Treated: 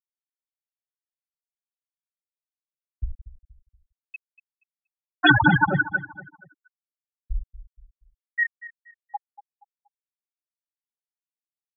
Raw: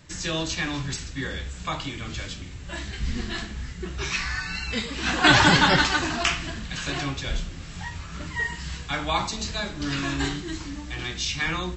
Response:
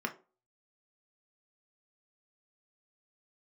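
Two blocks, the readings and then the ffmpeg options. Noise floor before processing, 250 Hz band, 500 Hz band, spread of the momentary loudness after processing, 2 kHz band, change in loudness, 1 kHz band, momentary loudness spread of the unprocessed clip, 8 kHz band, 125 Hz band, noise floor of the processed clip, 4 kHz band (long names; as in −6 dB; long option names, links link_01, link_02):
−39 dBFS, −2.5 dB, −8.0 dB, 23 LU, −0.5 dB, +5.0 dB, −3.0 dB, 17 LU, below −40 dB, −2.0 dB, below −85 dBFS, −10.0 dB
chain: -filter_complex "[0:a]afftfilt=real='re*gte(hypot(re,im),0.562)':imag='im*gte(hypot(re,im),0.562)':win_size=1024:overlap=0.75,equalizer=frequency=2000:width_type=o:width=0.77:gain=4.5,asplit=2[link_01][link_02];[link_02]adelay=237,lowpass=frequency=2300:poles=1,volume=-15dB,asplit=2[link_03][link_04];[link_04]adelay=237,lowpass=frequency=2300:poles=1,volume=0.37,asplit=2[link_05][link_06];[link_06]adelay=237,lowpass=frequency=2300:poles=1,volume=0.37[link_07];[link_01][link_03][link_05][link_07]amix=inputs=4:normalize=0,volume=3dB"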